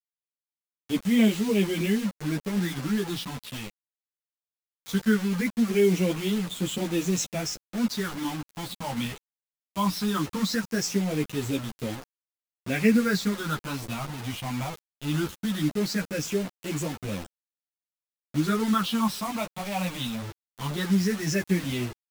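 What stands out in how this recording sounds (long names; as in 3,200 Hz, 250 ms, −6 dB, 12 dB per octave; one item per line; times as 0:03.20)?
phaser sweep stages 6, 0.19 Hz, lowest notch 410–1,500 Hz
a quantiser's noise floor 6 bits, dither none
a shimmering, thickened sound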